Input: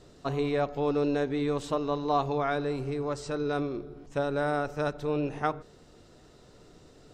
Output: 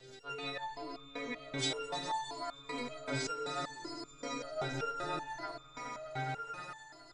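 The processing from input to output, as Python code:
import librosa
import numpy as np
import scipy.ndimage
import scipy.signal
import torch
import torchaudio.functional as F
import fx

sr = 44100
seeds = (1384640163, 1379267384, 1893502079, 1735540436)

p1 = fx.freq_snap(x, sr, grid_st=2)
p2 = scipy.signal.sosfilt(scipy.signal.butter(2, 5100.0, 'lowpass', fs=sr, output='sos'), p1)
p3 = fx.low_shelf(p2, sr, hz=370.0, db=-8.0)
p4 = fx.over_compress(p3, sr, threshold_db=-37.0, ratio=-1.0)
p5 = p3 + (p4 * librosa.db_to_amplitude(0.0))
p6 = fx.dispersion(p5, sr, late='lows', ms=47.0, hz=2100.0, at=(3.65, 4.82))
p7 = fx.rotary(p6, sr, hz=6.0)
p8 = fx.echo_swell(p7, sr, ms=104, loudest=5, wet_db=-11.0)
p9 = fx.resonator_held(p8, sr, hz=5.2, low_hz=130.0, high_hz=1200.0)
y = p9 * librosa.db_to_amplitude(8.0)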